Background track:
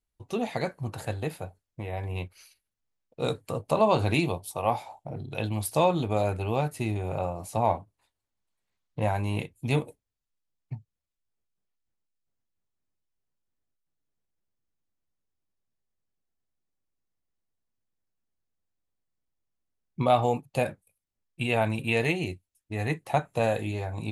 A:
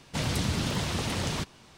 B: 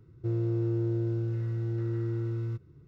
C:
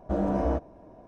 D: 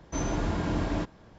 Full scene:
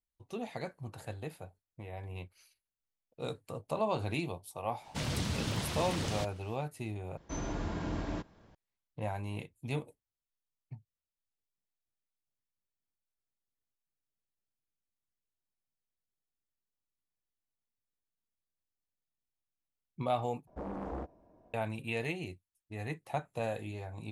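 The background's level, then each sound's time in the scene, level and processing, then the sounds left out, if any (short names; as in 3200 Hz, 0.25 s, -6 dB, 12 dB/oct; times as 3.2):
background track -10 dB
4.81 add A -6 dB, fades 0.05 s
7.17 replace with D -7.5 dB
20.47 replace with C -13 dB + Doppler distortion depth 0.83 ms
not used: B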